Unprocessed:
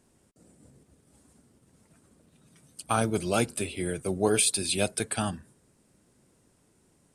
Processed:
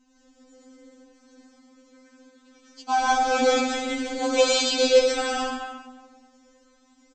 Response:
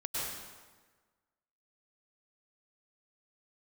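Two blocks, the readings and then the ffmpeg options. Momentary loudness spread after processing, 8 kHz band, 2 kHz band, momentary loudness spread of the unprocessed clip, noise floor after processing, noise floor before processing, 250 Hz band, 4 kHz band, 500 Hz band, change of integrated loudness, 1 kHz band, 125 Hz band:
10 LU, −1.5 dB, +8.0 dB, 9 LU, −61 dBFS, −66 dBFS, +2.0 dB, +8.0 dB, +8.5 dB, +5.0 dB, +10.0 dB, below −25 dB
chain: -filter_complex "[0:a]aresample=16000,acrusher=bits=4:mode=log:mix=0:aa=0.000001,aresample=44100[link_01];[1:a]atrim=start_sample=2205[link_02];[link_01][link_02]afir=irnorm=-1:irlink=0,afftfilt=real='re*3.46*eq(mod(b,12),0)':imag='im*3.46*eq(mod(b,12),0)':win_size=2048:overlap=0.75,volume=7dB"

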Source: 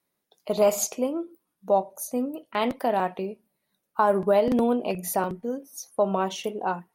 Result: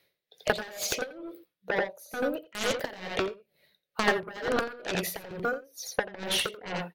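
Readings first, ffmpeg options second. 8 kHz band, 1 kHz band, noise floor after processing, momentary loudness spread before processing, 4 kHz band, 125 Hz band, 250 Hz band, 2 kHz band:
−3.5 dB, −8.0 dB, −85 dBFS, 13 LU, +7.0 dB, −4.5 dB, −9.0 dB, +6.5 dB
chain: -af "acontrast=82,equalizer=frequency=125:width_type=o:width=1:gain=4,equalizer=frequency=250:width_type=o:width=1:gain=-11,equalizer=frequency=500:width_type=o:width=1:gain=10,equalizer=frequency=1000:width_type=o:width=1:gain=-10,equalizer=frequency=2000:width_type=o:width=1:gain=8,equalizer=frequency=4000:width_type=o:width=1:gain=10,equalizer=frequency=8000:width_type=o:width=1:gain=-10,acompressor=threshold=-18dB:ratio=5,aeval=exprs='0.562*(cos(1*acos(clip(val(0)/0.562,-1,1)))-cos(1*PI/2))+0.178*(cos(7*acos(clip(val(0)/0.562,-1,1)))-cos(7*PI/2))':channel_layout=same,aecho=1:1:86:0.422,aeval=exprs='val(0)*pow(10,-20*(0.5-0.5*cos(2*PI*2.2*n/s))/20)':channel_layout=same"

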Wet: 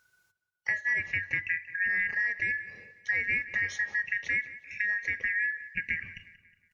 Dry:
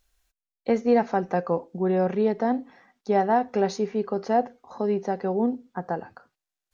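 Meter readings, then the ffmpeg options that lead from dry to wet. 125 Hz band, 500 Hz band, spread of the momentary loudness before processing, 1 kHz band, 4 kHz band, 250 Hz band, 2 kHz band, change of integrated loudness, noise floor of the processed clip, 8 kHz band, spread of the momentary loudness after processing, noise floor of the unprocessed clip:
−14.0 dB, −32.0 dB, 11 LU, below −30 dB, −3.0 dB, −27.5 dB, +14.5 dB, −3.5 dB, −77 dBFS, can't be measured, 8 LU, below −85 dBFS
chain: -filter_complex "[0:a]afftfilt=real='real(if(lt(b,272),68*(eq(floor(b/68),0)*1+eq(floor(b/68),1)*0+eq(floor(b/68),2)*3+eq(floor(b/68),3)*2)+mod(b,68),b),0)':imag='imag(if(lt(b,272),68*(eq(floor(b/68),0)*1+eq(floor(b/68),1)*0+eq(floor(b/68),2)*3+eq(floor(b/68),3)*2)+mod(b,68),b),0)':win_size=2048:overlap=0.75,equalizer=frequency=94:width_type=o:width=0.31:gain=9,acompressor=threshold=-27dB:ratio=4,asplit=2[link_01][link_02];[link_02]adelay=182,lowpass=frequency=4800:poles=1,volume=-16dB,asplit=2[link_03][link_04];[link_04]adelay=182,lowpass=frequency=4800:poles=1,volume=0.48,asplit=2[link_05][link_06];[link_06]adelay=182,lowpass=frequency=4800:poles=1,volume=0.48,asplit=2[link_07][link_08];[link_08]adelay=182,lowpass=frequency=4800:poles=1,volume=0.48[link_09];[link_03][link_05][link_07][link_09]amix=inputs=4:normalize=0[link_10];[link_01][link_10]amix=inputs=2:normalize=0"

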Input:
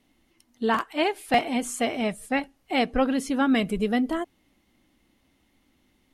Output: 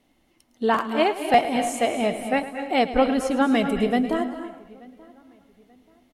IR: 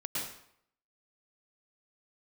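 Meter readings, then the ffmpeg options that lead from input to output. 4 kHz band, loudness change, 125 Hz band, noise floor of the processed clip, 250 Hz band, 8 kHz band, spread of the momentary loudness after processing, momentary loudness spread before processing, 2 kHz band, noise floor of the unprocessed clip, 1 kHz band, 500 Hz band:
+1.0 dB, +3.0 dB, +1.5 dB, −65 dBFS, +1.5 dB, +0.5 dB, 7 LU, 6 LU, +1.0 dB, −67 dBFS, +5.0 dB, +5.0 dB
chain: -filter_complex "[0:a]equalizer=frequency=630:width_type=o:width=1.2:gain=5.5,asplit=2[link_01][link_02];[link_02]adelay=883,lowpass=frequency=2300:poles=1,volume=-24dB,asplit=2[link_03][link_04];[link_04]adelay=883,lowpass=frequency=2300:poles=1,volume=0.35[link_05];[link_01][link_03][link_05]amix=inputs=3:normalize=0,asplit=2[link_06][link_07];[1:a]atrim=start_sample=2205,adelay=108[link_08];[link_07][link_08]afir=irnorm=-1:irlink=0,volume=-11.5dB[link_09];[link_06][link_09]amix=inputs=2:normalize=0"

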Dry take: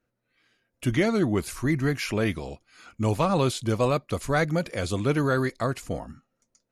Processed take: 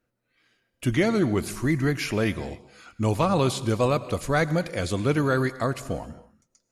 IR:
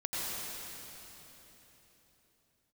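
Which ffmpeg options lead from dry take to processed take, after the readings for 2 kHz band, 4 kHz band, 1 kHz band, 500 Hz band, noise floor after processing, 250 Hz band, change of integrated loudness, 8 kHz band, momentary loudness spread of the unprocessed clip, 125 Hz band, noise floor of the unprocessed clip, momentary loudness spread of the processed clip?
+1.0 dB, +1.0 dB, +1.0 dB, +1.0 dB, −77 dBFS, +1.0 dB, +1.0 dB, +1.0 dB, 11 LU, +1.0 dB, −79 dBFS, 11 LU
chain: -filter_complex "[0:a]asplit=2[link_01][link_02];[1:a]atrim=start_sample=2205,afade=type=out:start_time=0.33:duration=0.01,atrim=end_sample=14994[link_03];[link_02][link_03]afir=irnorm=-1:irlink=0,volume=-17dB[link_04];[link_01][link_04]amix=inputs=2:normalize=0"

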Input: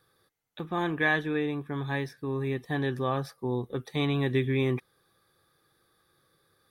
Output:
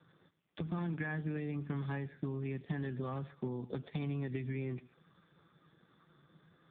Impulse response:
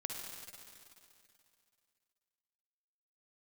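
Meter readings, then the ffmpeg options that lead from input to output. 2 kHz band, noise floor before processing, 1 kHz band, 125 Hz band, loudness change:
−15.0 dB, −70 dBFS, −14.0 dB, −6.0 dB, −9.5 dB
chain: -filter_complex "[0:a]equalizer=frequency=170:width_type=o:width=0.64:gain=12,acompressor=threshold=-29dB:ratio=8,asoftclip=type=hard:threshold=-24dB,acrossover=split=170|1800[link_01][link_02][link_03];[link_01]acompressor=threshold=-48dB:ratio=4[link_04];[link_02]acompressor=threshold=-44dB:ratio=4[link_05];[link_03]acompressor=threshold=-52dB:ratio=4[link_06];[link_04][link_05][link_06]amix=inputs=3:normalize=0,asplit=2[link_07][link_08];[1:a]atrim=start_sample=2205,afade=type=out:start_time=0.15:duration=0.01,atrim=end_sample=7056,asetrate=29547,aresample=44100[link_09];[link_08][link_09]afir=irnorm=-1:irlink=0,volume=-10.5dB[link_10];[link_07][link_10]amix=inputs=2:normalize=0,volume=3dB" -ar 8000 -c:a libopencore_amrnb -b:a 5150

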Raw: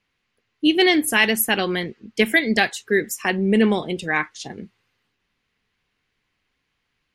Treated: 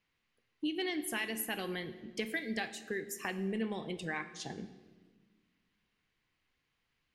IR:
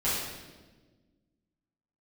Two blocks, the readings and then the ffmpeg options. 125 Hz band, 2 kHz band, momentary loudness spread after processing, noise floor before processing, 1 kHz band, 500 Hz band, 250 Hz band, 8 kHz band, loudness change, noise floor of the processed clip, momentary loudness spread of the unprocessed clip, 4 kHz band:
−15.0 dB, −18.5 dB, 7 LU, −75 dBFS, −17.5 dB, −17.5 dB, −17.0 dB, −15.5 dB, −18.0 dB, −81 dBFS, 12 LU, −18.5 dB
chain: -filter_complex "[0:a]acompressor=threshold=-30dB:ratio=3,asplit=2[link_01][link_02];[1:a]atrim=start_sample=2205[link_03];[link_02][link_03]afir=irnorm=-1:irlink=0,volume=-19.5dB[link_04];[link_01][link_04]amix=inputs=2:normalize=0,volume=-8dB"

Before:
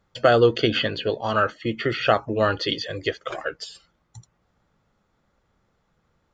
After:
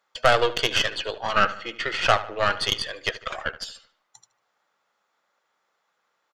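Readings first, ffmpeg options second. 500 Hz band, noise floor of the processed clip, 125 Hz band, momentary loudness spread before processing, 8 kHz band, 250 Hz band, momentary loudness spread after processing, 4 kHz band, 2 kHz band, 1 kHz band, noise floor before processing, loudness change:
−5.0 dB, −75 dBFS, −7.5 dB, 14 LU, can't be measured, −11.0 dB, 11 LU, +2.5 dB, +2.5 dB, +1.0 dB, −70 dBFS, −1.0 dB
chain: -filter_complex "[0:a]highpass=760,aeval=exprs='0.473*(cos(1*acos(clip(val(0)/0.473,-1,1)))-cos(1*PI/2))+0.0596*(cos(6*acos(clip(val(0)/0.473,-1,1)))-cos(6*PI/2))+0.00944*(cos(7*acos(clip(val(0)/0.473,-1,1)))-cos(7*PI/2))':channel_layout=same,asplit=2[link_01][link_02];[link_02]adelay=75,lowpass=frequency=3700:poles=1,volume=-15dB,asplit=2[link_03][link_04];[link_04]adelay=75,lowpass=frequency=3700:poles=1,volume=0.49,asplit=2[link_05][link_06];[link_06]adelay=75,lowpass=frequency=3700:poles=1,volume=0.49,asplit=2[link_07][link_08];[link_08]adelay=75,lowpass=frequency=3700:poles=1,volume=0.49,asplit=2[link_09][link_10];[link_10]adelay=75,lowpass=frequency=3700:poles=1,volume=0.49[link_11];[link_03][link_05][link_07][link_09][link_11]amix=inputs=5:normalize=0[link_12];[link_01][link_12]amix=inputs=2:normalize=0,volume=2.5dB"

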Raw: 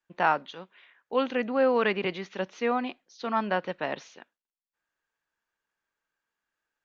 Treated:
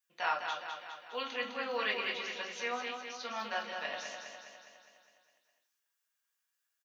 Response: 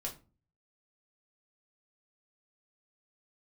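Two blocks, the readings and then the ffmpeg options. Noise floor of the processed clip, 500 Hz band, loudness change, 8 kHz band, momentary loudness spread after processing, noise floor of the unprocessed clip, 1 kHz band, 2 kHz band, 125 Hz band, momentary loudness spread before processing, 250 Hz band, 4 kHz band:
−84 dBFS, −13.0 dB, −8.5 dB, can't be measured, 12 LU, below −85 dBFS, −8.0 dB, −3.5 dB, below −20 dB, 14 LU, −18.0 dB, +1.5 dB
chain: -filter_complex "[0:a]aderivative,aecho=1:1:205|410|615|820|1025|1230|1435|1640:0.501|0.291|0.169|0.0978|0.0567|0.0329|0.0191|0.0111[link_01];[1:a]atrim=start_sample=2205[link_02];[link_01][link_02]afir=irnorm=-1:irlink=0,volume=7.5dB"

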